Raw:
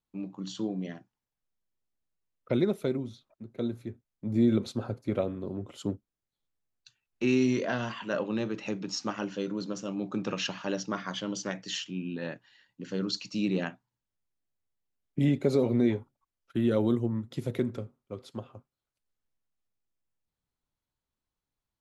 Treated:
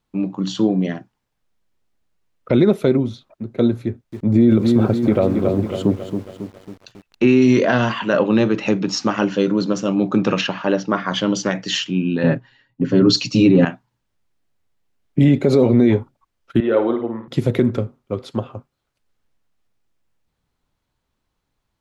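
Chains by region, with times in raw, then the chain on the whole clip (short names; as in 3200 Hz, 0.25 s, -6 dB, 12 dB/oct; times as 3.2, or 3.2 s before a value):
3.83–7.42 dynamic EQ 5600 Hz, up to -7 dB, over -57 dBFS, Q 1 + lo-fi delay 0.274 s, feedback 55%, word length 9-bit, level -8.5 dB
10.41–11.12 LPF 2000 Hz 6 dB/oct + low shelf 190 Hz -6.5 dB
12.23–13.65 low shelf 370 Hz +11.5 dB + comb 7.4 ms, depth 79% + three-band expander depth 70%
16.6–17.28 BPF 490–4200 Hz + air absorption 370 m + flutter echo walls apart 9.1 m, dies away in 0.42 s
whole clip: high shelf 6000 Hz -10.5 dB; maximiser +19.5 dB; gain -4 dB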